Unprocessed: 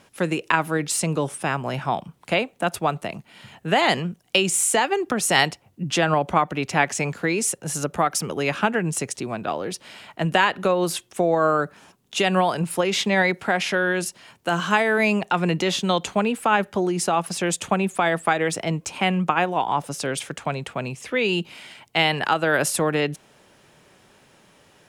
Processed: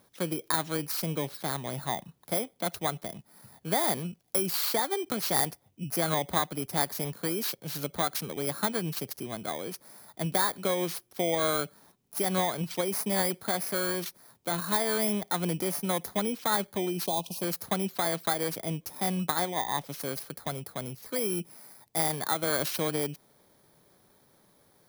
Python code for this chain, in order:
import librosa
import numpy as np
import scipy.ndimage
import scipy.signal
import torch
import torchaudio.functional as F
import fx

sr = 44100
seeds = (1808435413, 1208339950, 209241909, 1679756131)

y = fx.bit_reversed(x, sr, seeds[0], block=16)
y = fx.spec_box(y, sr, start_s=17.06, length_s=0.36, low_hz=1100.0, high_hz=2400.0, gain_db=-27)
y = F.gain(torch.from_numpy(y), -8.0).numpy()